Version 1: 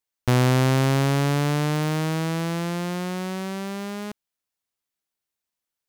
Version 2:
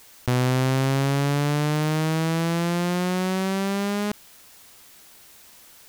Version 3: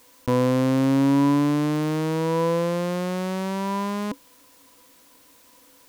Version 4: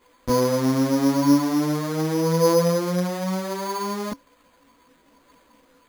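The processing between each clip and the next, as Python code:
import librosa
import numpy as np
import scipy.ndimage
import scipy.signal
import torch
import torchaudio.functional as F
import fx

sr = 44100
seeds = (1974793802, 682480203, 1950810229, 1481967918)

y1 = fx.env_flatten(x, sr, amount_pct=70)
y1 = y1 * 10.0 ** (-3.5 / 20.0)
y2 = fx.small_body(y1, sr, hz=(280.0, 500.0, 990.0), ring_ms=85, db=17)
y2 = y2 * 10.0 ** (-5.5 / 20.0)
y3 = fx.chorus_voices(y2, sr, voices=6, hz=0.78, base_ms=15, depth_ms=3.0, mix_pct=60)
y3 = np.repeat(scipy.signal.resample_poly(y3, 1, 8), 8)[:len(y3)]
y3 = y3 * 10.0 ** (4.0 / 20.0)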